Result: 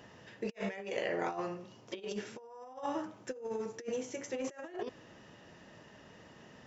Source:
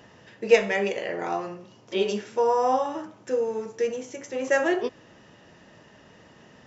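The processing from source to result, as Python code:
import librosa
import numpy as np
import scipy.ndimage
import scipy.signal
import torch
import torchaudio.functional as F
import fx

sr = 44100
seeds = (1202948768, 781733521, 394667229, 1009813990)

y = fx.over_compress(x, sr, threshold_db=-30.0, ratio=-0.5)
y = F.gain(torch.from_numpy(y), -8.5).numpy()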